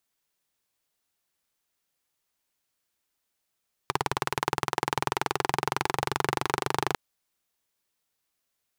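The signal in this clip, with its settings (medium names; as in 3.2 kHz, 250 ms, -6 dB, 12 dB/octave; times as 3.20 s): single-cylinder engine model, changing speed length 3.05 s, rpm 2200, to 3000, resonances 140/390/850 Hz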